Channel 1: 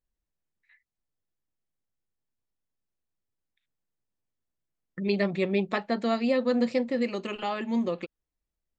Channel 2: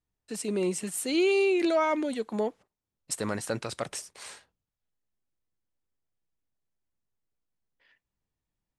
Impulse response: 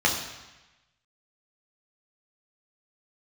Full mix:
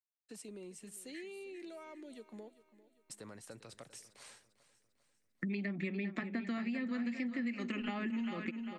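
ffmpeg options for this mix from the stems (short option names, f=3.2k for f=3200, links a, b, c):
-filter_complex "[0:a]equalizer=f=125:t=o:w=1:g=-6,equalizer=f=250:t=o:w=1:g=11,equalizer=f=500:t=o:w=1:g=-10,equalizer=f=1k:t=o:w=1:g=-5,equalizer=f=2k:t=o:w=1:g=10,equalizer=f=4k:t=o:w=1:g=-7,acompressor=threshold=-29dB:ratio=6,adelay=450,volume=1.5dB,asplit=2[a][b];[b]volume=-11dB[c];[1:a]agate=range=-33dB:threshold=-54dB:ratio=3:detection=peak,acompressor=threshold=-36dB:ratio=4,adynamicequalizer=threshold=0.00251:dfrequency=1000:dqfactor=0.74:tfrequency=1000:tqfactor=0.74:attack=5:release=100:ratio=0.375:range=2.5:mode=cutabove:tftype=bell,volume=-11dB,asplit=2[d][e];[e]volume=-17dB[f];[c][f]amix=inputs=2:normalize=0,aecho=0:1:398|796|1194|1592|1990|2388:1|0.45|0.202|0.0911|0.041|0.0185[g];[a][d][g]amix=inputs=3:normalize=0,acrossover=split=190|690[h][i][j];[h]acompressor=threshold=-44dB:ratio=4[k];[i]acompressor=threshold=-41dB:ratio=4[l];[j]acompressor=threshold=-43dB:ratio=4[m];[k][l][m]amix=inputs=3:normalize=0"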